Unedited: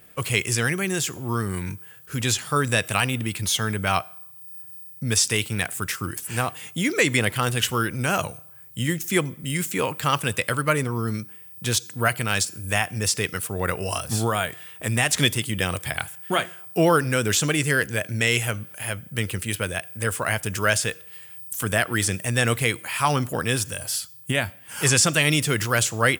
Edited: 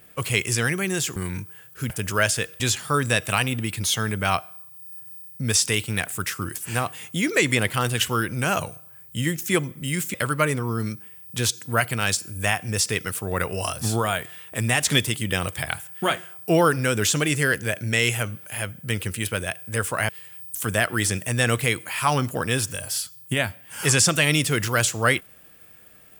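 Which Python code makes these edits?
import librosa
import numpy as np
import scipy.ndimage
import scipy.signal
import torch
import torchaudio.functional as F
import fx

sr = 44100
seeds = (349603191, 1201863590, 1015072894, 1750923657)

y = fx.edit(x, sr, fx.cut(start_s=1.16, length_s=0.32),
    fx.cut(start_s=9.76, length_s=0.66),
    fx.move(start_s=20.37, length_s=0.7, to_s=2.22), tone=tone)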